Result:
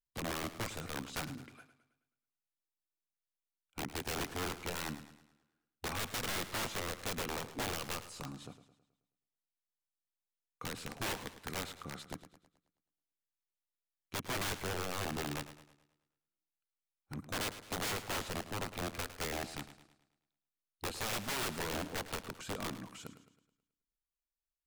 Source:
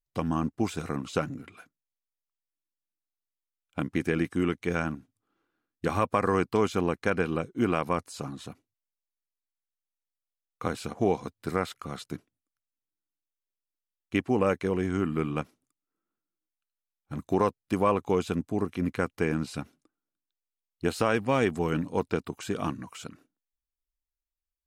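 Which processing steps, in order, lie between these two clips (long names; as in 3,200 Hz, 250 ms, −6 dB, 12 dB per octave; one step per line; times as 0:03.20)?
wrap-around overflow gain 24 dB
feedback echo with a swinging delay time 107 ms, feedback 46%, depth 53 cents, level −13 dB
level −7.5 dB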